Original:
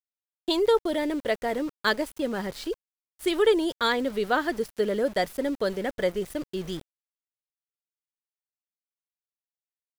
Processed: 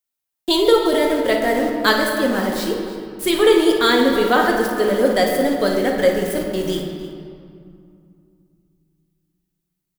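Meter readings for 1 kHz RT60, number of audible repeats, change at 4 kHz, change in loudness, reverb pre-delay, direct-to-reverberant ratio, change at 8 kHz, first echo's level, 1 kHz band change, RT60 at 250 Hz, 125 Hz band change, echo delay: 2.5 s, 2, +10.0 dB, +9.5 dB, 4 ms, -0.5 dB, +13.0 dB, -10.0 dB, +9.5 dB, 3.2 s, +9.5 dB, 56 ms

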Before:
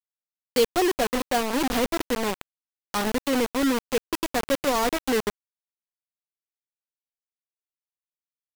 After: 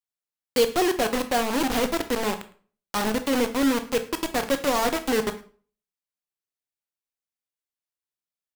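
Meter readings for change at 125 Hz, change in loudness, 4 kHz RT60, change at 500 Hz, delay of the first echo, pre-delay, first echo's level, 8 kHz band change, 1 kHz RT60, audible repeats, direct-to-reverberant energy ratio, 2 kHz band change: +1.0 dB, +0.5 dB, 0.35 s, +0.5 dB, 108 ms, 17 ms, -22.0 dB, +0.5 dB, 0.40 s, 1, 8.5 dB, +0.5 dB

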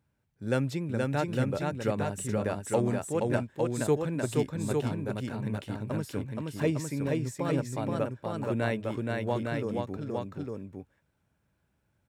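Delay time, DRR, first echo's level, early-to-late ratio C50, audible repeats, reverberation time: 474 ms, no reverb, -3.0 dB, no reverb, 2, no reverb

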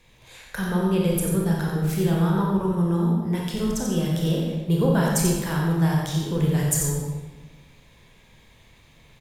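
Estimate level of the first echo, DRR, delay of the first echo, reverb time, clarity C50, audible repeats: -6.5 dB, -3.0 dB, 89 ms, 1.3 s, 0.0 dB, 1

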